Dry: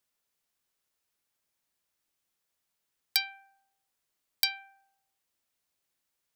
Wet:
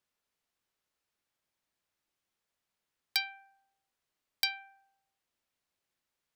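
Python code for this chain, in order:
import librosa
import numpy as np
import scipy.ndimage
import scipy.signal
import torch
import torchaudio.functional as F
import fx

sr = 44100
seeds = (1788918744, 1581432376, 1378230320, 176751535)

y = fx.high_shelf(x, sr, hz=6200.0, db=-10.0)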